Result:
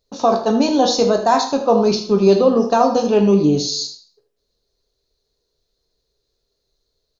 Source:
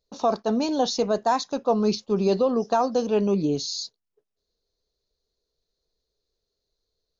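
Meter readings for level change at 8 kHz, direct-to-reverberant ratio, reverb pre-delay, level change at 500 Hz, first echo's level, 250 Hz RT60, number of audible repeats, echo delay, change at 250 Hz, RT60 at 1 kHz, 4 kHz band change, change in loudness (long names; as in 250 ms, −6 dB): can't be measured, 3.5 dB, 6 ms, +8.5 dB, −12.0 dB, 0.55 s, 1, 78 ms, +8.5 dB, 0.55 s, +8.0 dB, +8.0 dB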